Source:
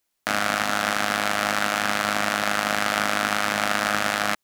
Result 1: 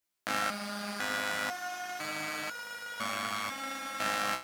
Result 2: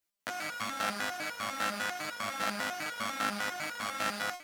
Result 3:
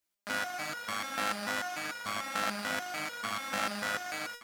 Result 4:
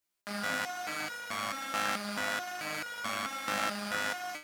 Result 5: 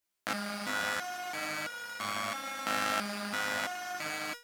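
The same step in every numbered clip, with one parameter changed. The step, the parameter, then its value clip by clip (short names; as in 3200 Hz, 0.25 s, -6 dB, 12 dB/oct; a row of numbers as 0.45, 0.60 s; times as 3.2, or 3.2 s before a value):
stepped resonator, rate: 2, 10, 6.8, 4.6, 3 Hz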